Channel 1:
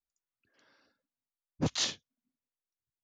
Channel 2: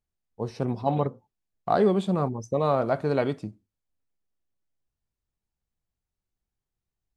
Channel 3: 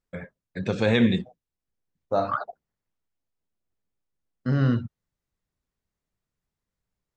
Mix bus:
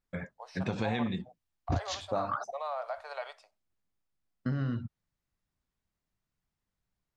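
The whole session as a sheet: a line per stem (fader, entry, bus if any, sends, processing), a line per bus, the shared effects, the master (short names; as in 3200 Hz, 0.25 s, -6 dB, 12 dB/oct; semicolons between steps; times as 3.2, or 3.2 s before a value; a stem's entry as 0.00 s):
+2.0 dB, 0.10 s, bus A, no send, resonant low shelf 120 Hz +11.5 dB, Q 3; transient shaper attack +9 dB, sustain -6 dB
-4.5 dB, 0.00 s, no bus, no send, steep high-pass 620 Hz 48 dB/oct; bell 5100 Hz +4 dB 0.32 oct; limiter -23.5 dBFS, peak gain reduction 11 dB
-0.5 dB, 0.00 s, bus A, no send, dry
bus A: 0.0 dB, bell 460 Hz -4.5 dB 0.63 oct; compressor 12:1, threshold -28 dBFS, peak gain reduction 17.5 dB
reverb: off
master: high shelf 6600 Hz -7 dB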